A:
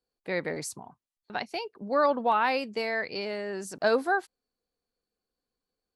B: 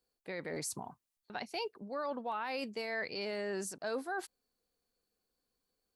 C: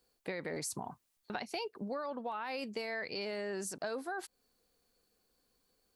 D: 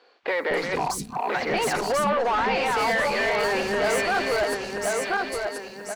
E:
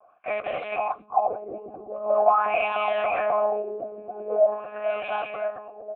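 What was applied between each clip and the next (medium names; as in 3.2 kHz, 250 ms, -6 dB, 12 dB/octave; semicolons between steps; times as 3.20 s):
treble shelf 6.4 kHz +6.5 dB; reverse; compression 6:1, threshold -35 dBFS, peak gain reduction 15 dB; reverse; peak limiter -29.5 dBFS, peak gain reduction 5.5 dB; trim +1 dB
compression 10:1, threshold -44 dBFS, peak gain reduction 11.5 dB; trim +8.5 dB
backward echo that repeats 517 ms, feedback 53%, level -1.5 dB; overdrive pedal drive 25 dB, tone 2.7 kHz, clips at -22.5 dBFS; three bands offset in time mids, lows, highs 230/280 ms, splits 280/4300 Hz; trim +7.5 dB
LFO low-pass sine 0.44 Hz 270–3100 Hz; monotone LPC vocoder at 8 kHz 210 Hz; vowel filter a; trim +7.5 dB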